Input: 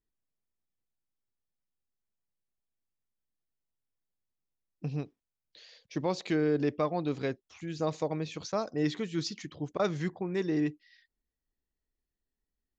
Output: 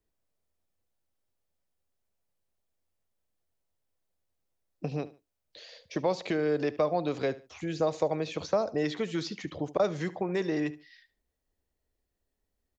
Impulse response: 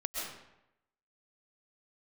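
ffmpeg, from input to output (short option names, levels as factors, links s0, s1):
-filter_complex "[0:a]equalizer=f=82:w=3.8:g=9.5,acrossover=split=160|760|3900[s0][s1][s2][s3];[s0]acompressor=threshold=0.00282:ratio=4[s4];[s1]acompressor=threshold=0.0126:ratio=4[s5];[s2]acompressor=threshold=0.00794:ratio=4[s6];[s3]acompressor=threshold=0.00224:ratio=4[s7];[s4][s5][s6][s7]amix=inputs=4:normalize=0,equalizer=f=580:w=1.3:g=8.5,asplit=2[s8][s9];[s9]aecho=0:1:73|146:0.126|0.0352[s10];[s8][s10]amix=inputs=2:normalize=0,volume=1.68"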